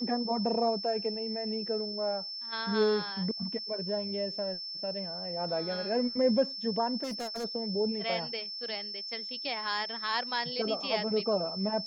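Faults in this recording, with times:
whistle 5,300 Hz −37 dBFS
0:07.03–0:07.45: clipping −33 dBFS

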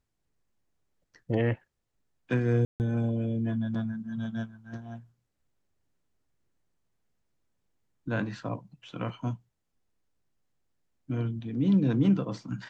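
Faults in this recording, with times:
0:02.65–0:02.80: drop-out 149 ms

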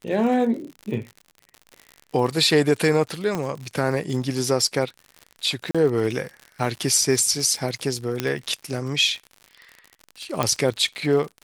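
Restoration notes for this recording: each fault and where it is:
surface crackle 70 per second −31 dBFS
0:03.35: click −13 dBFS
0:05.71–0:05.75: drop-out 36 ms
0:08.20: click −8 dBFS
0:10.43: click −7 dBFS

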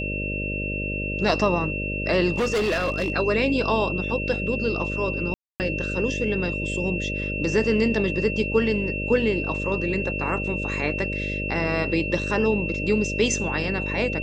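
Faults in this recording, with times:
mains buzz 50 Hz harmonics 12 −30 dBFS
whistle 2,700 Hz −29 dBFS
0:02.32–0:03.12: clipping −19.5 dBFS
0:05.34–0:05.60: drop-out 259 ms

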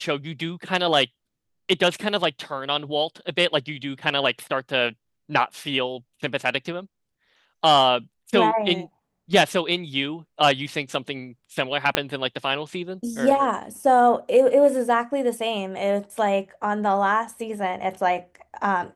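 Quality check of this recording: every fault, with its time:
0:11.95: click −3 dBFS

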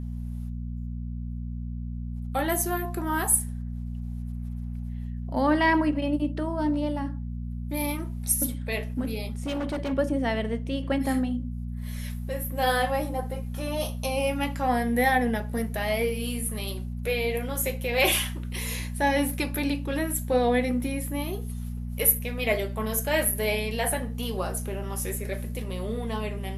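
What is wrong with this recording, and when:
mains hum 60 Hz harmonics 4 −33 dBFS
0:09.25–0:09.93: clipping −26 dBFS

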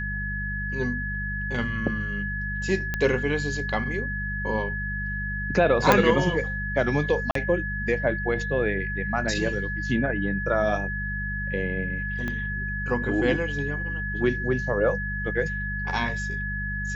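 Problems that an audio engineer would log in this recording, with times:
mains hum 50 Hz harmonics 4 −32 dBFS
whistle 1,700 Hz −30 dBFS
0:02.94: click −13 dBFS
0:05.92: click −3 dBFS
0:07.31–0:07.35: drop-out 43 ms
0:12.28: click −18 dBFS

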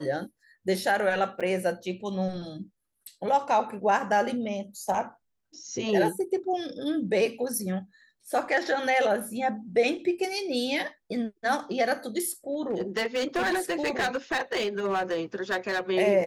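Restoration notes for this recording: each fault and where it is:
0:01.40–0:01.41: drop-out 6.1 ms
0:12.53–0:15.81: clipping −23 dBFS

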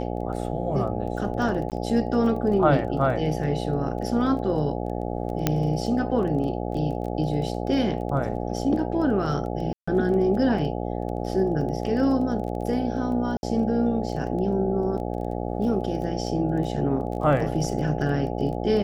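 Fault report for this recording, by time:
mains buzz 60 Hz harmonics 14 −29 dBFS
surface crackle 15 per second −33 dBFS
0:01.70–0:01.72: drop-out 18 ms
0:05.47: click −6 dBFS
0:09.73–0:09.88: drop-out 145 ms
0:13.37–0:13.43: drop-out 61 ms

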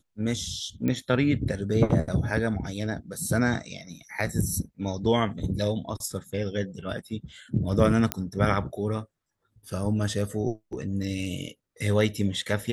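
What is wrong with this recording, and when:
0:00.88: click −16 dBFS
0:08.12: click −7 dBFS

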